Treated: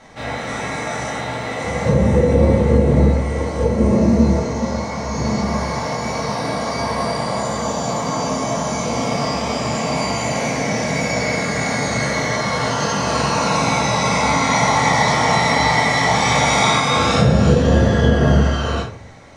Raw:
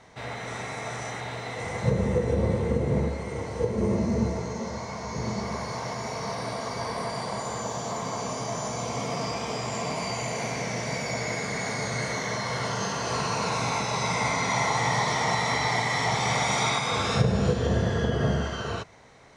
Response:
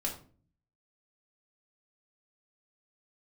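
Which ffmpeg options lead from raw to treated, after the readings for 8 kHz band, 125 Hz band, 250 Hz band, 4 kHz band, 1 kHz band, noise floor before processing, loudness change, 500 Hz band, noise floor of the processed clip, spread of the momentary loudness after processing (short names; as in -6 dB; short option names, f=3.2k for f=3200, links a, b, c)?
+8.5 dB, +10.0 dB, +12.0 dB, +9.0 dB, +10.0 dB, -36 dBFS, +10.0 dB, +10.0 dB, -26 dBFS, 9 LU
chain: -filter_complex "[1:a]atrim=start_sample=2205[a];[0:a][a]afir=irnorm=-1:irlink=0,volume=6.5dB"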